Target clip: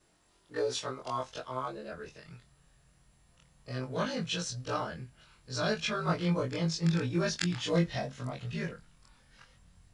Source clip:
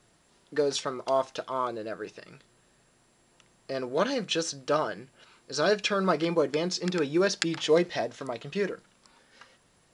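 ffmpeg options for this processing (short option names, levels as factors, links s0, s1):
-af "afftfilt=real='re':imag='-im':win_size=2048:overlap=0.75,asubboost=boost=11.5:cutoff=110"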